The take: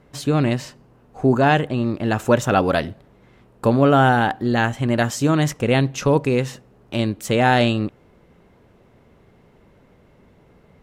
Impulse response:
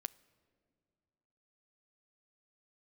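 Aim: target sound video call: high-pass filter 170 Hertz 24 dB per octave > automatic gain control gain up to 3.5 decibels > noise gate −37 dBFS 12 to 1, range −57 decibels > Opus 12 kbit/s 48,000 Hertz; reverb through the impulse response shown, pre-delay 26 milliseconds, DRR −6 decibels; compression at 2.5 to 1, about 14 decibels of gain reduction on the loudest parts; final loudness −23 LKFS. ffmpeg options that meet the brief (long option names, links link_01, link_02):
-filter_complex "[0:a]acompressor=threshold=-33dB:ratio=2.5,asplit=2[link_01][link_02];[1:a]atrim=start_sample=2205,adelay=26[link_03];[link_02][link_03]afir=irnorm=-1:irlink=0,volume=9dB[link_04];[link_01][link_04]amix=inputs=2:normalize=0,highpass=frequency=170:width=0.5412,highpass=frequency=170:width=1.3066,dynaudnorm=maxgain=3.5dB,agate=range=-57dB:threshold=-37dB:ratio=12,volume=3dB" -ar 48000 -c:a libopus -b:a 12k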